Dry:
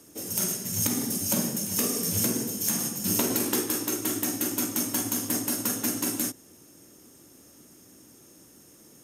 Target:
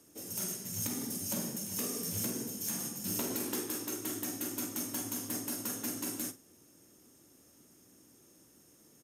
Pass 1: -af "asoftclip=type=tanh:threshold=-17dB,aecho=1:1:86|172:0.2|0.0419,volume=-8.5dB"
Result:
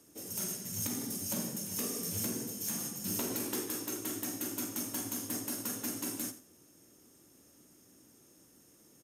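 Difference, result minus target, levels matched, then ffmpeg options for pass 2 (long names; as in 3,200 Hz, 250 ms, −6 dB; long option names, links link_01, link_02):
echo 38 ms late
-af "asoftclip=type=tanh:threshold=-17dB,aecho=1:1:48|96:0.2|0.0419,volume=-8.5dB"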